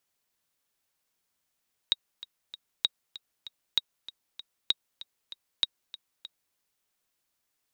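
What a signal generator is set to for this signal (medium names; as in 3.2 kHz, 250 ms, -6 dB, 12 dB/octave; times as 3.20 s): metronome 194 bpm, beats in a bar 3, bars 5, 3.79 kHz, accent 17.5 dB -10 dBFS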